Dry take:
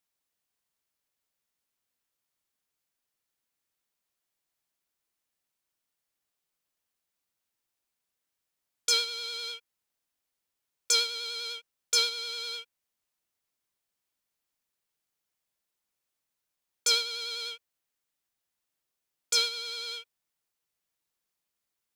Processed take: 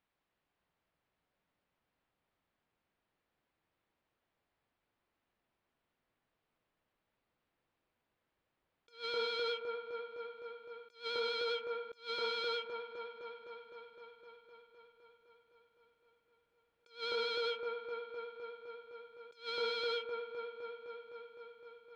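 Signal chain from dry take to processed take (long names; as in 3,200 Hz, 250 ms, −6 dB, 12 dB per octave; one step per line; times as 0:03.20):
delay with a low-pass on its return 256 ms, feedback 77%, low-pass 950 Hz, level −4 dB
dynamic equaliser 2,900 Hz, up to −5 dB, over −39 dBFS, Q 1
compressor whose output falls as the input rises −38 dBFS, ratio −0.5
high-frequency loss of the air 400 metres
level +5 dB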